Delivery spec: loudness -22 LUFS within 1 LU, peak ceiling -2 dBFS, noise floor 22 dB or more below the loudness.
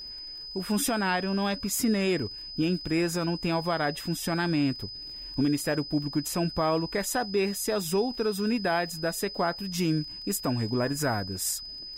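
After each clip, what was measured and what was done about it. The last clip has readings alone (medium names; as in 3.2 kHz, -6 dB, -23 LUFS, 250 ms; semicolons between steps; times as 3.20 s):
tick rate 29 per s; steady tone 5 kHz; tone level -38 dBFS; loudness -28.5 LUFS; peak level -15.5 dBFS; loudness target -22.0 LUFS
-> de-click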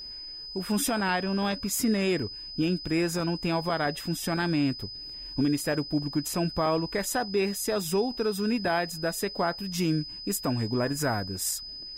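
tick rate 0 per s; steady tone 5 kHz; tone level -38 dBFS
-> band-stop 5 kHz, Q 30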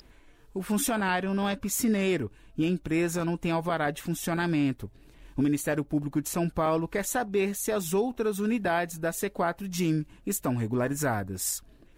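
steady tone not found; loudness -28.5 LUFS; peak level -16.5 dBFS; loudness target -22.0 LUFS
-> trim +6.5 dB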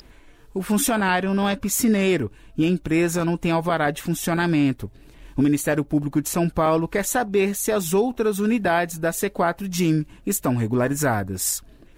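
loudness -22.0 LUFS; peak level -9.5 dBFS; noise floor -49 dBFS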